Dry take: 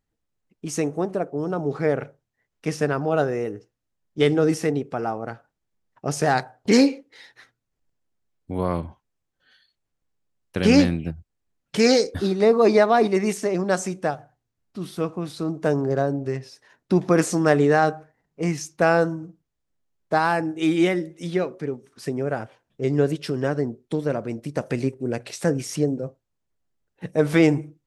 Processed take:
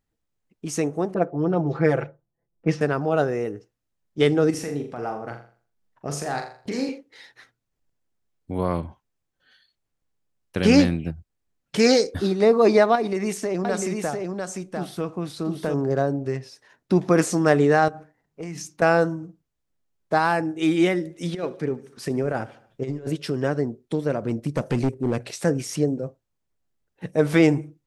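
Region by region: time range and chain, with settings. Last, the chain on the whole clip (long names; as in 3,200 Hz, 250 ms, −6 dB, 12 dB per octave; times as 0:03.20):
0:01.14–0:02.81: low-pass that shuts in the quiet parts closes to 470 Hz, open at −17.5 dBFS + comb filter 5.9 ms, depth 95%
0:04.50–0:06.89: downward compressor 3 to 1, threshold −24 dBFS + shaped tremolo triangle 3.9 Hz, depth 45% + flutter between parallel walls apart 7.1 metres, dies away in 0.42 s
0:12.95–0:15.74: downward compressor 4 to 1, threshold −21 dBFS + single-tap delay 698 ms −4 dB
0:17.88–0:18.82: mains-hum notches 60/120/180/240/300 Hz + downward compressor, threshold −30 dBFS
0:21.05–0:23.10: compressor whose output falls as the input rises −25 dBFS, ratio −0.5 + repeating echo 74 ms, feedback 53%, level −19.5 dB
0:24.22–0:25.31: low-shelf EQ 340 Hz +6.5 dB + hard clipping −16.5 dBFS
whole clip: no processing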